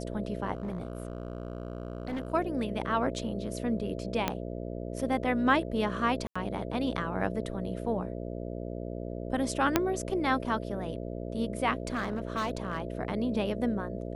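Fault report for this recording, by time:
mains buzz 60 Hz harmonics 11 −37 dBFS
0:00.53–0:02.32: clipping −30.5 dBFS
0:04.28: click −12 dBFS
0:06.27–0:06.36: drop-out 85 ms
0:09.76: click −7 dBFS
0:11.80–0:12.85: clipping −26.5 dBFS

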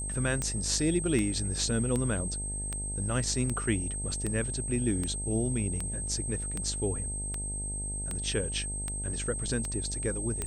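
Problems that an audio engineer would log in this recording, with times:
mains buzz 50 Hz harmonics 18 −37 dBFS
scratch tick 78 rpm −18 dBFS
whistle 8,300 Hz −35 dBFS

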